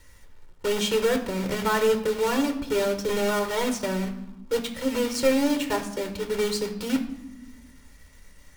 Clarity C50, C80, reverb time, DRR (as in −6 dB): 10.5 dB, 13.0 dB, 0.95 s, 5.5 dB